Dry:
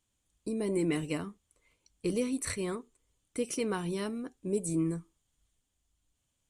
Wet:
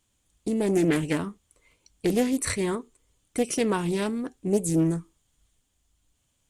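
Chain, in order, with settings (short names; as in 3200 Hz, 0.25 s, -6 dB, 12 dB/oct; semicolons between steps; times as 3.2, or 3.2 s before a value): Doppler distortion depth 0.31 ms; gain +7.5 dB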